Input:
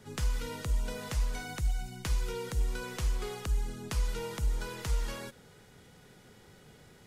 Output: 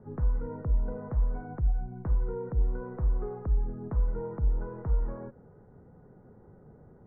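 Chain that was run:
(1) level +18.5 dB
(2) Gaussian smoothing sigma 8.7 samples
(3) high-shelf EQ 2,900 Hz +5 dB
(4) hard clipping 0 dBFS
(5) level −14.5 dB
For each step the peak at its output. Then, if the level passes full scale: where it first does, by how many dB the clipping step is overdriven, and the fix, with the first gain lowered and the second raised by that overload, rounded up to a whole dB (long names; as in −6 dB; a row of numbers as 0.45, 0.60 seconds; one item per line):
−3.0, −3.5, −3.5, −3.5, −18.0 dBFS
no step passes full scale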